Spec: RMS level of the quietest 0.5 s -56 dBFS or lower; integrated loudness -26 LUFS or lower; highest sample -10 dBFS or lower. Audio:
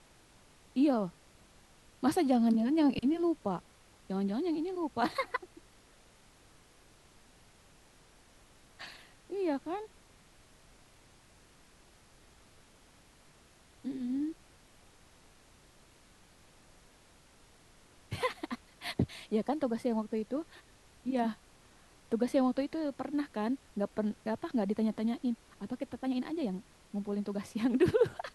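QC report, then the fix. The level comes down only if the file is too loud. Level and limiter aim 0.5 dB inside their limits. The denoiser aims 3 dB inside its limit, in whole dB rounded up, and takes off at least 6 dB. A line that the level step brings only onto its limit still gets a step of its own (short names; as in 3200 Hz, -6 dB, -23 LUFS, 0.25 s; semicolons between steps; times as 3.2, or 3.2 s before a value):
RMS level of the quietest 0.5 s -61 dBFS: OK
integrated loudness -33.5 LUFS: OK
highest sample -15.5 dBFS: OK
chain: none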